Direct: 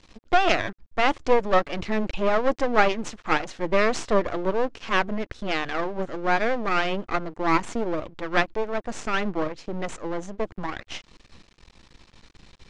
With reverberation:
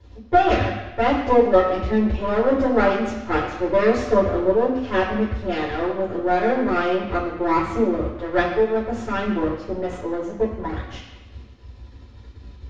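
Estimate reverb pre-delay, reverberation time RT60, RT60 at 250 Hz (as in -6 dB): 3 ms, 1.0 s, 0.95 s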